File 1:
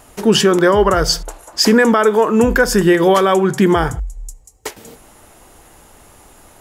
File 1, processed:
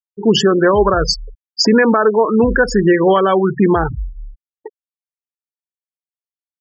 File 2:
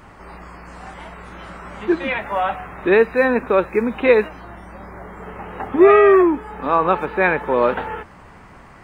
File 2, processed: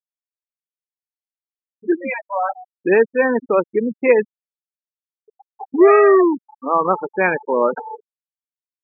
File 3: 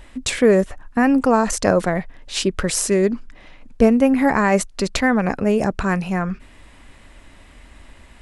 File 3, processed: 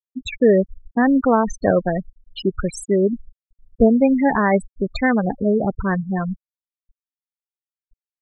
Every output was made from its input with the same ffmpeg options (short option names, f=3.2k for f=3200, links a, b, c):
-af "aeval=exprs='val(0)+0.00794*sin(2*PI*1200*n/s)':c=same,afftfilt=real='re*gte(hypot(re,im),0.224)':imag='im*gte(hypot(re,im),0.224)':win_size=1024:overlap=0.75"